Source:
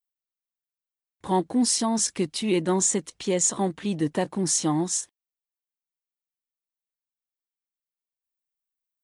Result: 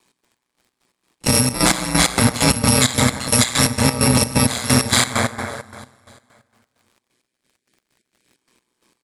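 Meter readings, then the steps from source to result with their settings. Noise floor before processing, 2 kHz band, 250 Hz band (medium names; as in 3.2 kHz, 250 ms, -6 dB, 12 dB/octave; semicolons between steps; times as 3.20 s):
under -85 dBFS, +19.0 dB, +6.0 dB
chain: bit-reversed sample order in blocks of 128 samples; in parallel at -9 dB: wavefolder -29 dBFS; on the sum: spectral selection erased 7.02–8.37 s, 620–1400 Hz; cabinet simulation 200–9800 Hz, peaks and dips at 290 Hz +5 dB, 460 Hz -4 dB, 690 Hz -5 dB, 1.4 kHz -9 dB, 2.8 kHz -8 dB, 5.8 kHz -6 dB; plate-style reverb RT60 1.7 s, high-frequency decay 0.45×, DRR -1 dB; compression 4:1, threshold -37 dBFS, peak gain reduction 13 dB; crackle 120 per s -72 dBFS; ring modulator 62 Hz; treble shelf 4.1 kHz -7 dB; on a send: feedback delay 291 ms, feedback 53%, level -21 dB; on the sum: trance gate "x.x..x.x.x.x" 131 bpm -12 dB; loudness maximiser +32.5 dB; trim -1 dB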